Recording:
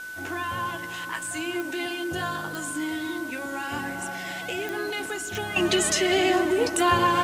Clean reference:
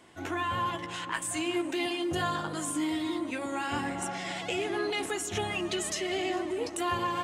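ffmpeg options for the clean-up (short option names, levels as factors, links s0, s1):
-af "adeclick=t=4,bandreject=f=1500:w=30,afwtdn=0.004,asetnsamples=n=441:p=0,asendcmd='5.56 volume volume -9.5dB',volume=1"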